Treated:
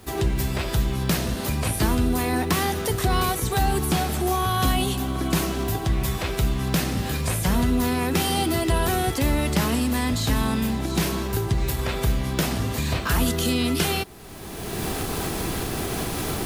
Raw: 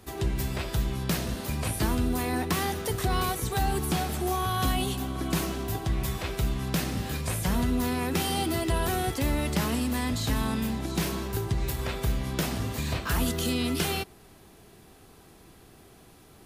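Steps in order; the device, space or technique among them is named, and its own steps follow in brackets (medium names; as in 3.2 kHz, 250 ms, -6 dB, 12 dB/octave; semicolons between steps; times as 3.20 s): cheap recorder with automatic gain (white noise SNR 38 dB; recorder AGC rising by 25 dB/s); trim +5 dB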